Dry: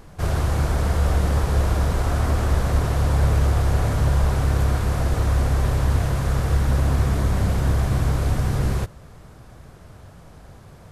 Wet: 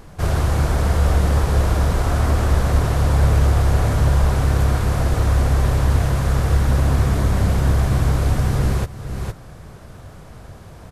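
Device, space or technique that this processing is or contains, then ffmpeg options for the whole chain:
ducked delay: -filter_complex "[0:a]asplit=3[link_01][link_02][link_03];[link_02]adelay=460,volume=-2.5dB[link_04];[link_03]apad=whole_len=501684[link_05];[link_04][link_05]sidechaincompress=threshold=-37dB:ratio=8:attack=40:release=427[link_06];[link_01][link_06]amix=inputs=2:normalize=0,volume=3dB"

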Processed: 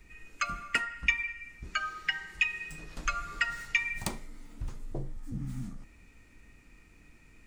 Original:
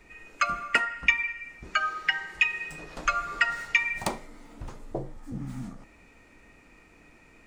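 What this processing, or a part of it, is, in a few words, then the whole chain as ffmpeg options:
smiley-face EQ: -af "lowshelf=frequency=140:gain=8,equalizer=frequency=670:width_type=o:width=1.9:gain=-8,highshelf=frequency=8600:gain=6,volume=-3.5dB"

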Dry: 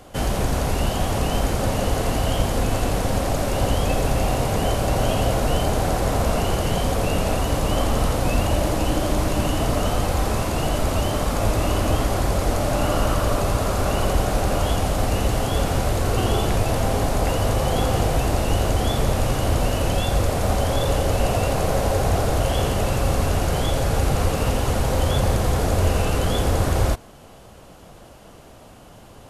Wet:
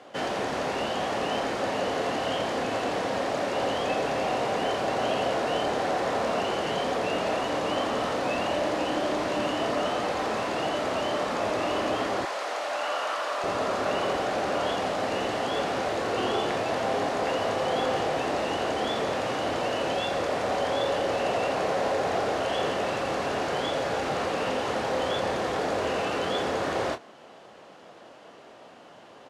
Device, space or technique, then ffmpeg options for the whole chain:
intercom: -filter_complex "[0:a]highpass=310,lowpass=4500,equalizer=frequency=1800:width_type=o:width=0.21:gain=4,asoftclip=type=tanh:threshold=-16dB,asplit=2[link_01][link_02];[link_02]adelay=27,volume=-9.5dB[link_03];[link_01][link_03]amix=inputs=2:normalize=0,asettb=1/sr,asplit=3[link_04][link_05][link_06];[link_04]atrim=end=12.254[link_07];[link_05]atrim=start=12.25:end=13.44,asetpts=PTS-STARTPTS,afade=type=in:duration=0.004:curve=qsin,afade=type=out:start_time=1.186:duration=0.004:curve=qsin,highpass=720[link_08];[link_06]atrim=start=13.436[link_09];[link_07][link_08]acrossfade=duration=0.004:curve1=hsin:curve2=qsin[link_10];[link_10][link_09]acrossfade=duration=0.004:curve1=qsin:curve2=hsin,volume=-1.5dB"

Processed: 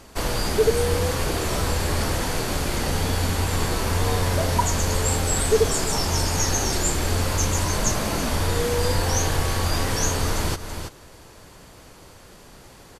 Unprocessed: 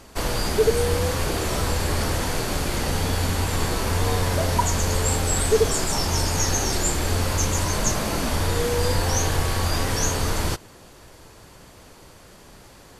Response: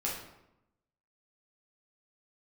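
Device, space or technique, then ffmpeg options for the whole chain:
ducked delay: -filter_complex "[0:a]asplit=3[link_01][link_02][link_03];[link_02]adelay=328,volume=-8dB[link_04];[link_03]apad=whole_len=587405[link_05];[link_04][link_05]sidechaincompress=threshold=-28dB:ratio=8:attack=6.9:release=232[link_06];[link_01][link_06]amix=inputs=2:normalize=0"

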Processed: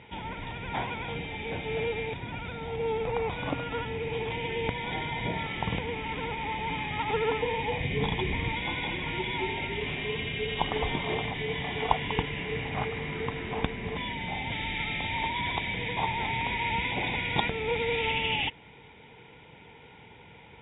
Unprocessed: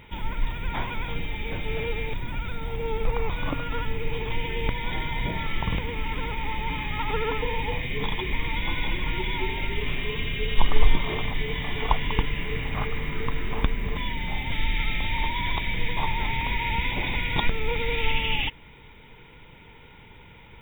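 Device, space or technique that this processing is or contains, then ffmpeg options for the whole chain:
guitar cabinet: -filter_complex "[0:a]highpass=94,equalizer=frequency=460:width_type=q:width=4:gain=3,equalizer=frequency=750:width_type=q:width=4:gain=7,equalizer=frequency=1200:width_type=q:width=4:gain=-5,lowpass=frequency=4400:width=0.5412,lowpass=frequency=4400:width=1.3066,asettb=1/sr,asplit=3[link_01][link_02][link_03];[link_01]atrim=end=7.804[link_04];[link_02]atrim=start=7.8:end=8.53,asetpts=PTS-STARTPTS,afade=type=in:duration=0.004:curve=qsin,afade=type=out:start_time=0.726:duration=0.004:curve=qsin,lowshelf=frequency=190:gain=10[link_05];[link_03]atrim=start=8.526[link_06];[link_04][link_05]acrossfade=duration=0.004:curve1=hsin:curve2=qsin[link_07];[link_07][link_06]acrossfade=duration=0.004:curve1=qsin:curve2=hsin,volume=-1.5dB"

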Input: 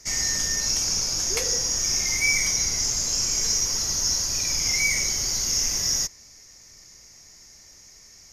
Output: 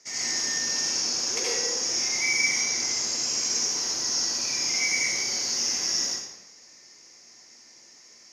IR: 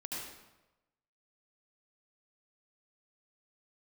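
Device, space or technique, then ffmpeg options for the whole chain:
supermarket ceiling speaker: -filter_complex "[0:a]highpass=260,lowpass=6700[link_01];[1:a]atrim=start_sample=2205[link_02];[link_01][link_02]afir=irnorm=-1:irlink=0"

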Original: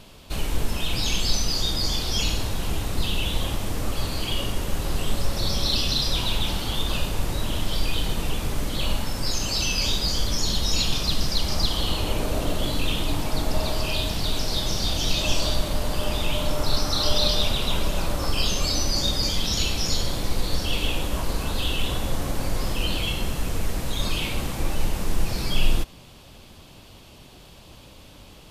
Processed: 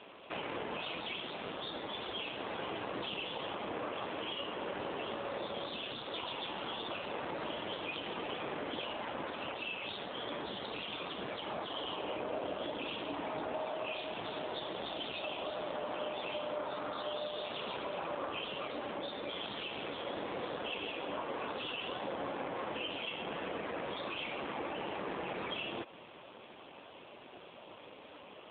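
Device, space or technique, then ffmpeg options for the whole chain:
voicemail: -af "highpass=380,lowpass=2600,acompressor=threshold=-37dB:ratio=8,volume=4dB" -ar 8000 -c:a libopencore_amrnb -b:a 7400

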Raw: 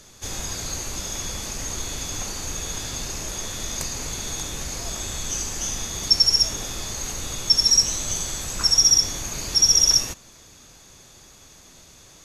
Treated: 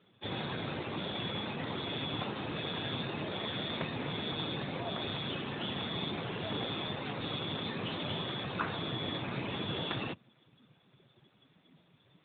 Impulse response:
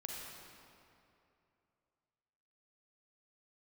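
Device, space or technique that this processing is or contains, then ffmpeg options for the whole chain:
mobile call with aggressive noise cancelling: -af "highpass=frequency=110:width=0.5412,highpass=frequency=110:width=1.3066,afftdn=noise_reduction=15:noise_floor=-42,volume=2dB" -ar 8000 -c:a libopencore_amrnb -b:a 12200

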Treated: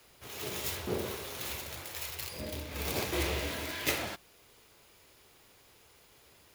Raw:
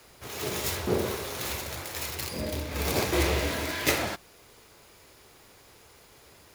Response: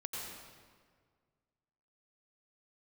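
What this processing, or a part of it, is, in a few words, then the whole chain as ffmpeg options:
presence and air boost: -filter_complex "[0:a]equalizer=frequency=3000:width_type=o:width=0.77:gain=4,highshelf=frequency=12000:gain=6,asettb=1/sr,asplit=3[link_01][link_02][link_03];[link_01]atrim=end=1.954[link_04];[link_02]atrim=start=1.95:end=2.4,asetpts=PTS-STARTPTS,afade=type=in:duration=0.004:curve=qsin,afade=type=out:start_time=0.446:duration=0.004:curve=qsin,equalizer=frequency=240:width_type=o:width=0.66:gain=-14.5[link_05];[link_03]atrim=start=2.396[link_06];[link_04][link_05]acrossfade=duration=0.004:curve1=hsin:curve2=qsin[link_07];[link_07][link_06]acrossfade=duration=0.004:curve1=qsin:curve2=hsin,volume=-7.5dB"

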